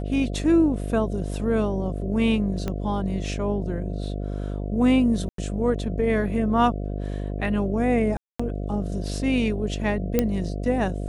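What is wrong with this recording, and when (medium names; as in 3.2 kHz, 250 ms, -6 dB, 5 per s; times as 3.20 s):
buzz 50 Hz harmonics 14 -29 dBFS
2.68 s: pop -15 dBFS
5.29–5.38 s: dropout 93 ms
8.17–8.39 s: dropout 225 ms
10.19 s: pop -7 dBFS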